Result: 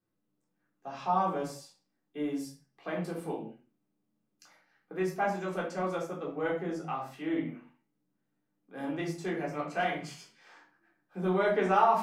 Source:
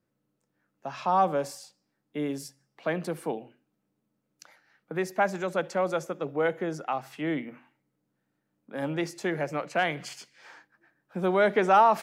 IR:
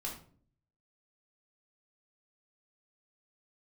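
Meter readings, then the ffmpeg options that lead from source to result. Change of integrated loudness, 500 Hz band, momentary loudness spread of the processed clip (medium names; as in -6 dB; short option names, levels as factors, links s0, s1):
-4.0 dB, -4.5 dB, 18 LU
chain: -filter_complex "[1:a]atrim=start_sample=2205,afade=t=out:st=0.24:d=0.01,atrim=end_sample=11025[s0];[0:a][s0]afir=irnorm=-1:irlink=0,volume=0.562"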